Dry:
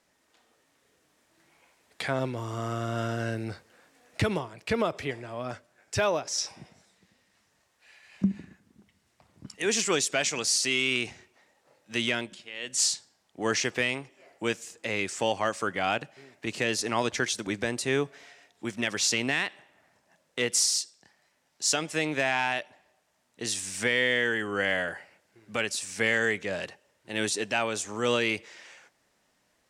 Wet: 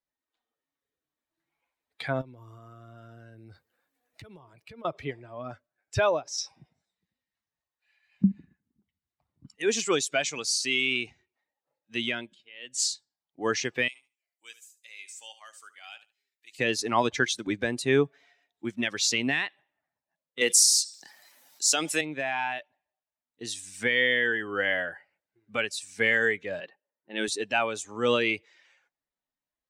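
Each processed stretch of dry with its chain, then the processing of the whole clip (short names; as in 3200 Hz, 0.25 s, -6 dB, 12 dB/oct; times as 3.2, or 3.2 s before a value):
2.21–4.85 high shelf 9700 Hz +9.5 dB + compressor 12:1, threshold -37 dBFS
13.88–16.59 differentiator + feedback echo 73 ms, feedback 29%, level -10 dB
20.41–22.01 HPF 210 Hz + bell 13000 Hz +10.5 dB 2 oct + fast leveller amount 50%
26.6–27.28 brick-wall FIR high-pass 150 Hz + low-pass opened by the level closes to 1900 Hz, open at -25 dBFS
whole clip: per-bin expansion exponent 1.5; vocal rider 2 s; gain +2.5 dB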